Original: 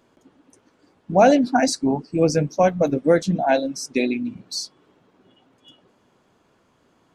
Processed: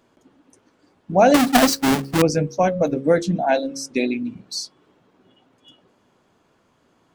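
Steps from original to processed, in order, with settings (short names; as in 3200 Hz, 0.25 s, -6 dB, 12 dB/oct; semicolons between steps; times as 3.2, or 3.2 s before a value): 1.34–2.22 half-waves squared off; de-hum 68.33 Hz, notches 8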